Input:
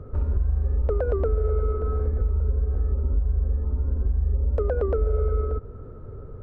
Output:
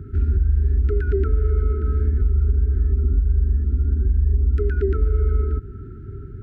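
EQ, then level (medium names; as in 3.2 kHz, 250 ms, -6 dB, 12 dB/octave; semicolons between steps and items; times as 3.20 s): high-pass 41 Hz; brick-wall FIR band-stop 420–1300 Hz; +6.0 dB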